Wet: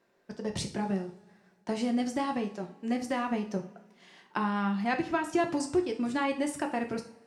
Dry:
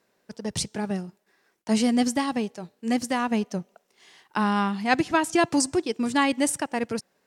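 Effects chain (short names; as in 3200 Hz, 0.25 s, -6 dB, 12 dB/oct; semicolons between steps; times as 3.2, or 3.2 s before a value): high shelf 4600 Hz -12 dB; compressor 3:1, threshold -28 dBFS, peak gain reduction 9 dB; two-slope reverb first 0.38 s, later 1.9 s, from -22 dB, DRR 3 dB; gain -1 dB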